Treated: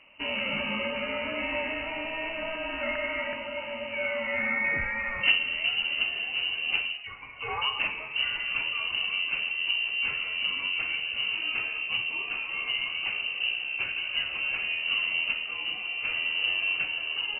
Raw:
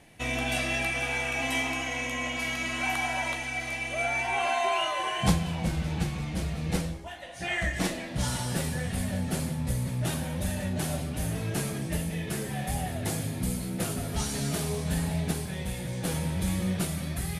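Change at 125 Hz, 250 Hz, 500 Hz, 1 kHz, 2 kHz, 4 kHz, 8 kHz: -22.0 dB, -12.0 dB, -2.0 dB, -5.5 dB, +5.0 dB, +8.5 dB, under -40 dB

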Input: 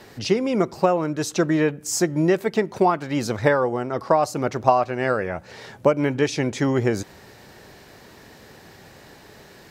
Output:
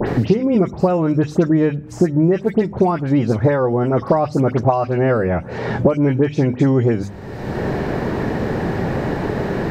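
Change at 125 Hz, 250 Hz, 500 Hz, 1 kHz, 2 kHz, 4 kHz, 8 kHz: +10.5 dB, +7.5 dB, +4.0 dB, +1.0 dB, +0.5 dB, n/a, under -10 dB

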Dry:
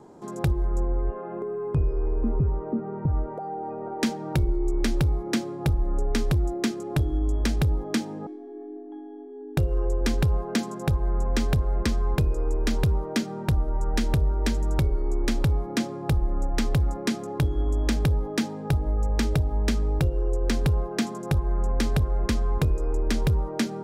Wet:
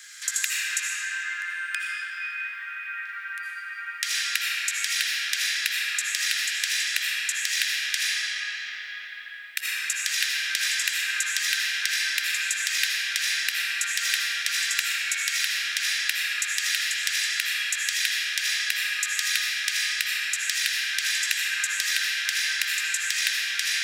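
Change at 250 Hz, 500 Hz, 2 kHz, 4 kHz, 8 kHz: under -40 dB, under -30 dB, +15.0 dB, +14.0 dB, +15.0 dB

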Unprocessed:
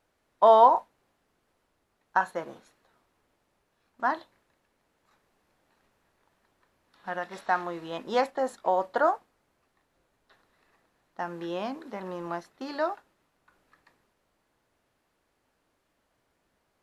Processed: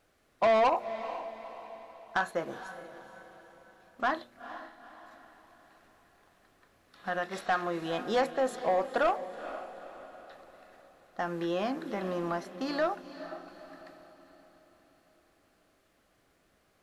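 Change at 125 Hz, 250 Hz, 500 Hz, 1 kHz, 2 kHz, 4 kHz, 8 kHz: +3.0, +2.0, -2.5, -6.0, +0.5, +2.0, +2.5 dB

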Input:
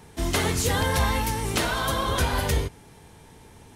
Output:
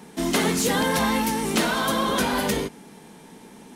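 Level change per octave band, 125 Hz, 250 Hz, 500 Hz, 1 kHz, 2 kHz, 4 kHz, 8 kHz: -6.0, +7.0, +3.5, +2.5, +2.0, +2.0, +2.0 dB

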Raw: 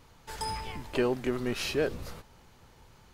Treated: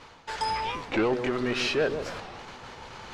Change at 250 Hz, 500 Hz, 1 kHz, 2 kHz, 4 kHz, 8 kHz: +3.0, +3.0, +8.0, +7.0, +5.5, 0.0 dB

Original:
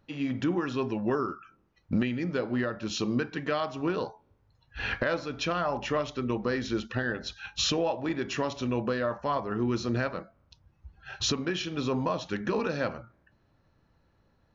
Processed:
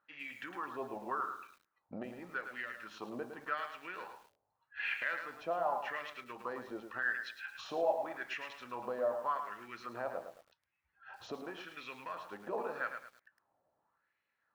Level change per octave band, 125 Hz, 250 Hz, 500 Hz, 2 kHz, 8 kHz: -26.0 dB, -19.5 dB, -9.0 dB, -4.0 dB, n/a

